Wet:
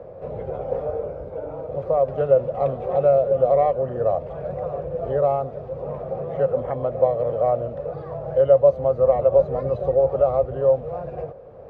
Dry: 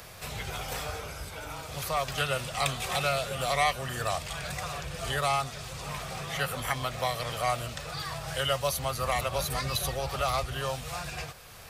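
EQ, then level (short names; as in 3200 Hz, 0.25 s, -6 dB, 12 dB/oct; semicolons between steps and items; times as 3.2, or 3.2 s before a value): synth low-pass 530 Hz, resonance Q 4.9; low shelf 73 Hz -10 dB; +6.0 dB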